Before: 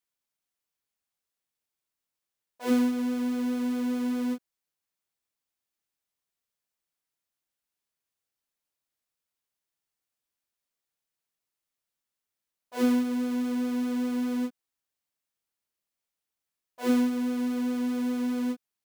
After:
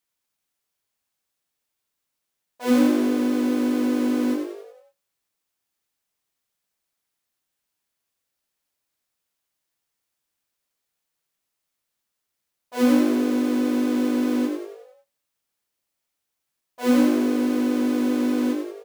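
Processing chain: frequency-shifting echo 91 ms, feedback 51%, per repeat +52 Hz, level -5.5 dB; on a send at -21.5 dB: reverberation RT60 0.50 s, pre-delay 3 ms; on the sum: trim +5.5 dB

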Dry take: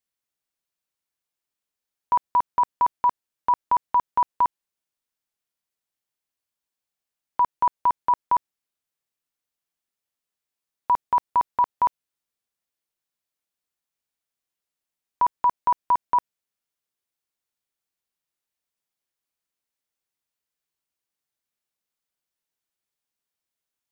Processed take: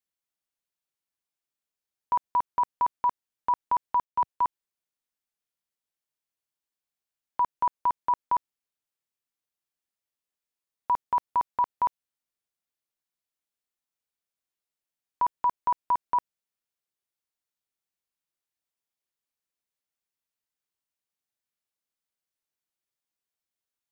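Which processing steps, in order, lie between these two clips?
4.04–4.45 s: three bands expanded up and down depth 40%; trim -4.5 dB

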